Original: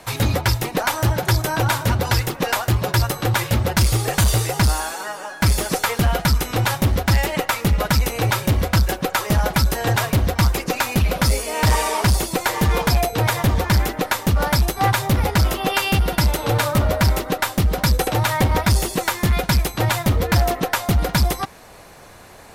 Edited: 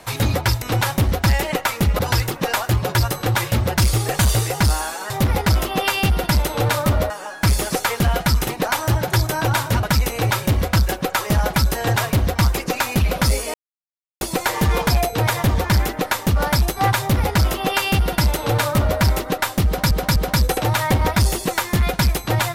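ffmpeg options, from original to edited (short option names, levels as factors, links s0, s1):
-filter_complex "[0:a]asplit=11[s0][s1][s2][s3][s4][s5][s6][s7][s8][s9][s10];[s0]atrim=end=0.622[s11];[s1]atrim=start=6.458:end=7.832[s12];[s2]atrim=start=1.978:end=5.092[s13];[s3]atrim=start=14.988:end=16.992[s14];[s4]atrim=start=5.088:end=6.462[s15];[s5]atrim=start=0.618:end=1.982[s16];[s6]atrim=start=7.828:end=11.54,asetpts=PTS-STARTPTS,afade=t=out:st=3.708:d=0.004:c=hsin[s17];[s7]atrim=start=11.54:end=12.21,asetpts=PTS-STARTPTS,volume=0[s18];[s8]atrim=start=12.21:end=17.912,asetpts=PTS-STARTPTS,afade=t=in:d=0.004:c=hsin[s19];[s9]atrim=start=17.658:end=17.912[s20];[s10]atrim=start=17.658[s21];[s11][s12]acrossfade=d=0.004:c1=hsin:c2=hsin[s22];[s22][s13]acrossfade=d=0.004:c1=hsin:c2=hsin[s23];[s23][s14]acrossfade=d=0.004:c1=hsin:c2=hsin[s24];[s24][s15]acrossfade=d=0.004:c1=hsin:c2=hsin[s25];[s25][s16]acrossfade=d=0.004:c1=hsin:c2=hsin[s26];[s17][s18][s19]concat=n=3:v=0:a=1[s27];[s26][s27]acrossfade=d=0.004:c1=hsin:c2=hsin[s28];[s28][s20]acrossfade=d=0.004:c1=hsin:c2=hsin[s29];[s29][s21]acrossfade=d=0.004:c1=hsin:c2=hsin"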